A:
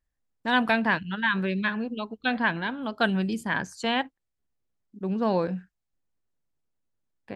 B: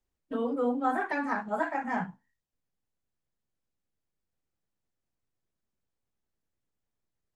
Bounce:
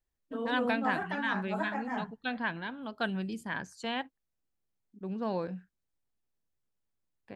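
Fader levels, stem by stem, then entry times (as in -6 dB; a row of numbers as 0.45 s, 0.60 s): -8.5 dB, -5.0 dB; 0.00 s, 0.00 s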